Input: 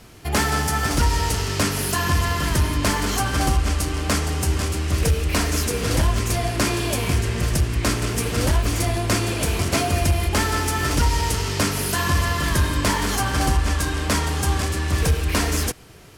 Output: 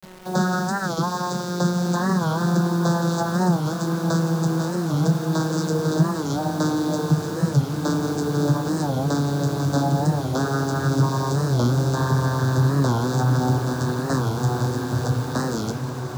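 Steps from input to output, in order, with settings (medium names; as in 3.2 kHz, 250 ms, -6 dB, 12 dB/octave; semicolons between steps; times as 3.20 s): vocoder on a note that slides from F#3, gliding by -8 st; elliptic band-stop 1.6–3.7 kHz; treble shelf 2.8 kHz +4 dB; hum notches 60/120/180/240/300/360/420/480 Hz; in parallel at -2.5 dB: peak limiter -20.5 dBFS, peak gain reduction 10.5 dB; on the sum: bit crusher 7-bit; on a send: echo that smears into a reverb 1822 ms, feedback 61%, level -9 dB; on the sum: warped record 45 rpm, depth 160 cents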